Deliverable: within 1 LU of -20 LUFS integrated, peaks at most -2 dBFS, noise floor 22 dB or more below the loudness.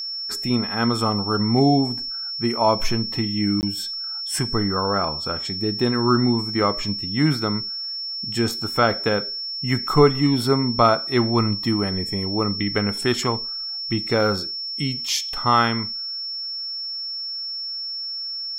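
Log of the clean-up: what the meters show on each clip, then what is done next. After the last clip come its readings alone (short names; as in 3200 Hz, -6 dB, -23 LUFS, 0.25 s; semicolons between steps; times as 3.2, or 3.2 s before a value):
dropouts 1; longest dropout 19 ms; steady tone 5400 Hz; tone level -27 dBFS; loudness -22.0 LUFS; peak -3.0 dBFS; loudness target -20.0 LUFS
-> interpolate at 3.61, 19 ms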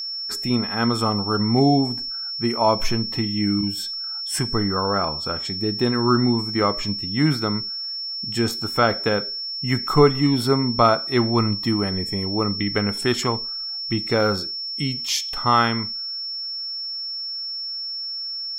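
dropouts 0; steady tone 5400 Hz; tone level -27 dBFS
-> notch 5400 Hz, Q 30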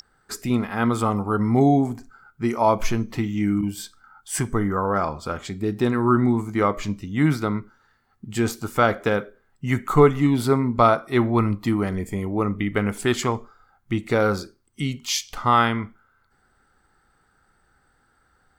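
steady tone none; loudness -22.5 LUFS; peak -3.0 dBFS; loudness target -20.0 LUFS
-> gain +2.5 dB; limiter -2 dBFS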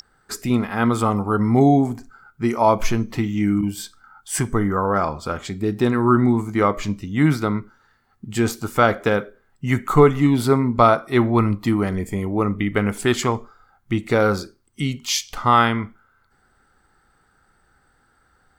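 loudness -20.0 LUFS; peak -2.0 dBFS; noise floor -62 dBFS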